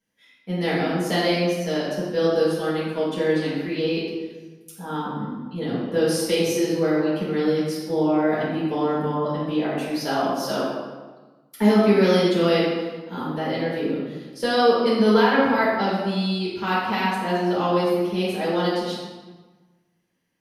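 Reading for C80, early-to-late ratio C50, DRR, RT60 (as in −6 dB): 2.0 dB, −1.0 dB, −9.0 dB, 1.3 s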